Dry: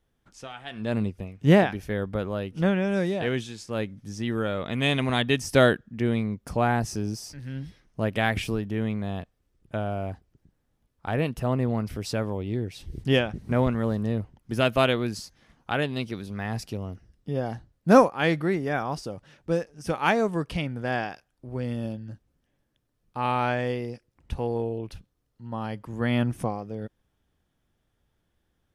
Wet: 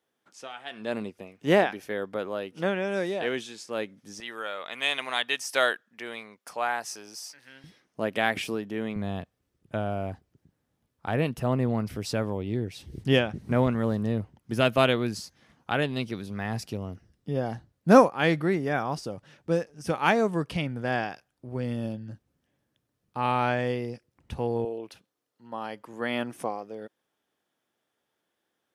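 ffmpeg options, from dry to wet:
-af "asetnsamples=n=441:p=0,asendcmd='4.2 highpass f 810;7.64 highpass f 250;8.96 highpass f 88;24.65 highpass f 350',highpass=320"

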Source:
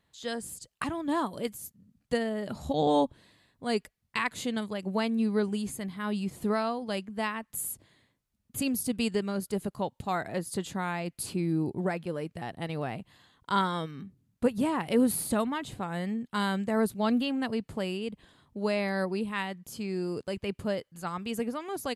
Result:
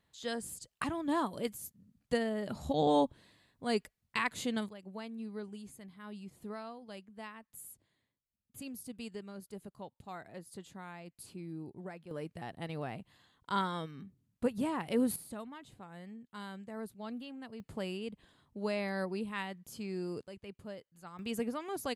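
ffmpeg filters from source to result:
-af "asetnsamples=n=441:p=0,asendcmd='4.69 volume volume -15dB;12.11 volume volume -6dB;15.16 volume volume -16dB;17.6 volume volume -6dB;20.26 volume volume -14.5dB;21.19 volume volume -3.5dB',volume=0.708"

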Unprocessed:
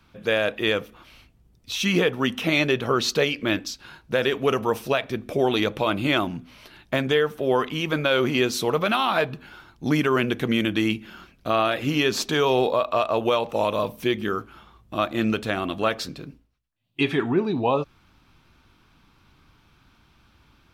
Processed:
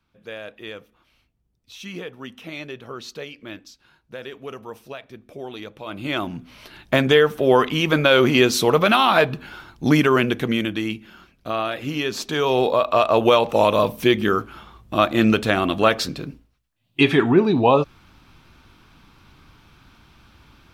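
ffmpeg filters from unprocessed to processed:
-af "volume=5.96,afade=t=in:st=5.82:d=0.39:silence=0.281838,afade=t=in:st=6.21:d=0.76:silence=0.398107,afade=t=out:st=9.85:d=0.97:silence=0.354813,afade=t=in:st=12.22:d=1:silence=0.334965"

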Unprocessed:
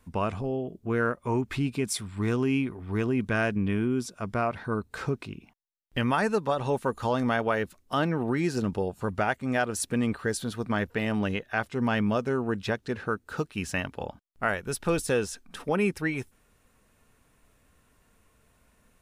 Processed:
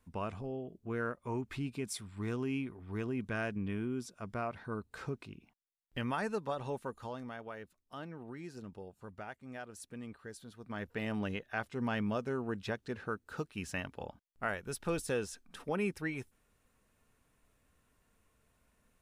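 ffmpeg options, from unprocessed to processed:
-af "volume=1.06,afade=t=out:st=6.56:d=0.73:silence=0.354813,afade=t=in:st=10.6:d=0.43:silence=0.298538"

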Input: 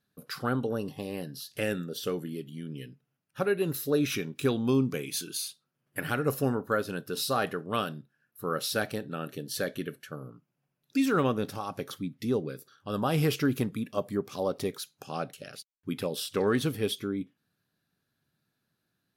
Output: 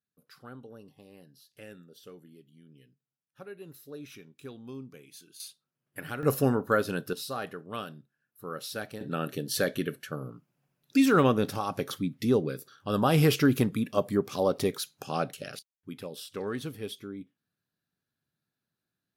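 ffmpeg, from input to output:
-af "asetnsamples=n=441:p=0,asendcmd='5.4 volume volume -6.5dB;6.23 volume volume 3dB;7.13 volume volume -7dB;9.01 volume volume 4dB;15.59 volume volume -8dB',volume=0.141"

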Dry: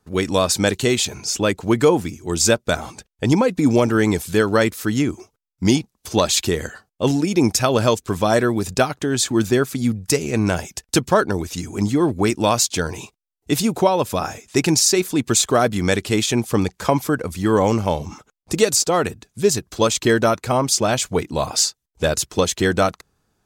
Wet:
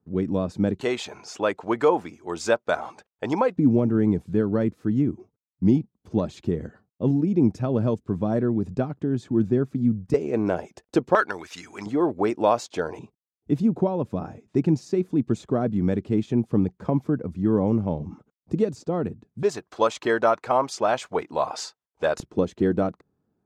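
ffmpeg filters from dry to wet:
-af "asetnsamples=n=441:p=0,asendcmd='0.81 bandpass f 860;3.56 bandpass f 180;10.14 bandpass f 470;11.15 bandpass f 1600;11.86 bandpass f 620;12.99 bandpass f 190;19.43 bandpass f 870;22.2 bandpass f 250',bandpass=f=190:t=q:w=1:csg=0"

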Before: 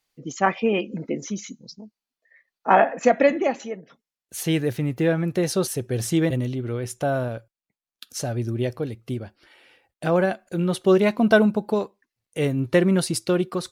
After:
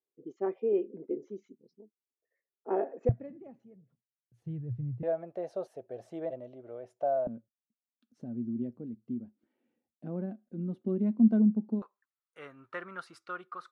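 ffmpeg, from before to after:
-af "asetnsamples=n=441:p=0,asendcmd='3.09 bandpass f 120;5.03 bandpass f 640;7.27 bandpass f 230;11.82 bandpass f 1300',bandpass=f=390:t=q:w=6.6:csg=0"

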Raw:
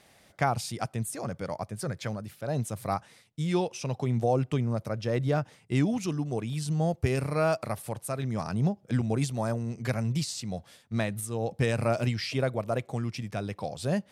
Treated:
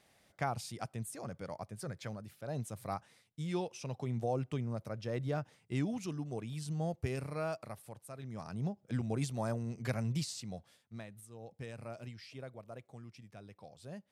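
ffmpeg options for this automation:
-af "volume=1.12,afade=t=out:st=6.92:d=1.14:silence=0.446684,afade=t=in:st=8.06:d=1.38:silence=0.316228,afade=t=out:st=10.19:d=0.84:silence=0.223872"

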